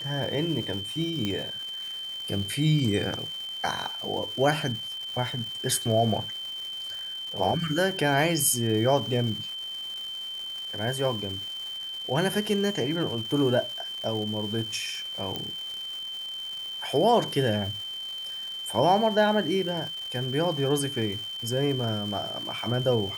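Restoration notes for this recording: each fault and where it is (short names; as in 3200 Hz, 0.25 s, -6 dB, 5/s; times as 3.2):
crackle 570/s -36 dBFS
tone 3100 Hz -33 dBFS
1.25 pop -15 dBFS
15.36 pop -16 dBFS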